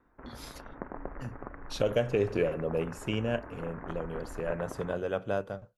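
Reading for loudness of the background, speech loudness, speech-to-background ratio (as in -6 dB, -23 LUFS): -45.5 LUFS, -32.5 LUFS, 13.0 dB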